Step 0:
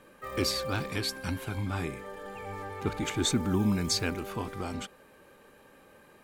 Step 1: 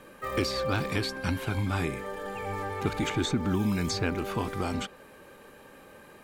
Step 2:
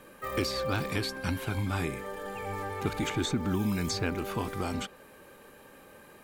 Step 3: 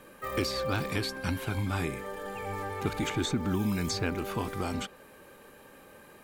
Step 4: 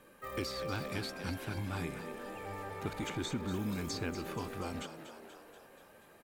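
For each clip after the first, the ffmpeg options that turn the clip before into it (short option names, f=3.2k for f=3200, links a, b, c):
-filter_complex "[0:a]acrossover=split=1700|5800[a][b][c];[a]acompressor=threshold=-30dB:ratio=4[d];[b]acompressor=threshold=-40dB:ratio=4[e];[c]acompressor=threshold=-55dB:ratio=4[f];[d][e][f]amix=inputs=3:normalize=0,volume=5.5dB"
-af "highshelf=f=11k:g=8,volume=-2dB"
-af anull
-filter_complex "[0:a]asplit=9[a][b][c][d][e][f][g][h][i];[b]adelay=240,afreqshift=72,volume=-10.5dB[j];[c]adelay=480,afreqshift=144,volume=-14.7dB[k];[d]adelay=720,afreqshift=216,volume=-18.8dB[l];[e]adelay=960,afreqshift=288,volume=-23dB[m];[f]adelay=1200,afreqshift=360,volume=-27.1dB[n];[g]adelay=1440,afreqshift=432,volume=-31.3dB[o];[h]adelay=1680,afreqshift=504,volume=-35.4dB[p];[i]adelay=1920,afreqshift=576,volume=-39.6dB[q];[a][j][k][l][m][n][o][p][q]amix=inputs=9:normalize=0,volume=-7.5dB"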